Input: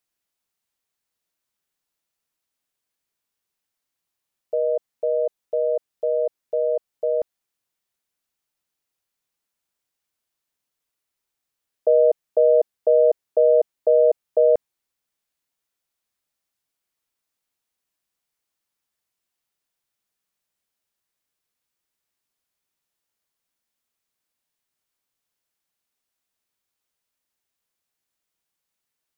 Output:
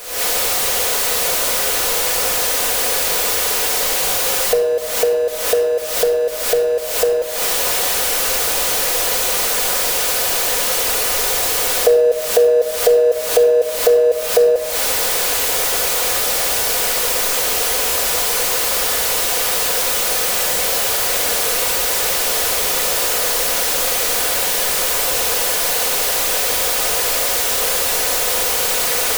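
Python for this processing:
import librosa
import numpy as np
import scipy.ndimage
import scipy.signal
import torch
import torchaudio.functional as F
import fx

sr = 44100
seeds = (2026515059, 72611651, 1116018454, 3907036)

y = x + 0.5 * 10.0 ** (-24.0 / 20.0) * np.sign(x)
y = fx.recorder_agc(y, sr, target_db=-13.0, rise_db_per_s=78.0, max_gain_db=30)
y = fx.graphic_eq_10(y, sr, hz=(125, 250, 500), db=(-6, -9, 11))
y = fx.room_shoebox(y, sr, seeds[0], volume_m3=2800.0, walls='furnished', distance_m=1.9)
y = y * librosa.db_to_amplitude(-5.5)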